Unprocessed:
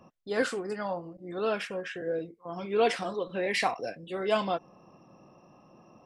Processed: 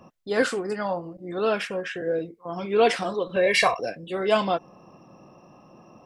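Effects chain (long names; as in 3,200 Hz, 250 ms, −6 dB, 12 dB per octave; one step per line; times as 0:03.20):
0:03.36–0:03.80: comb filter 1.8 ms, depth 92%
level +5.5 dB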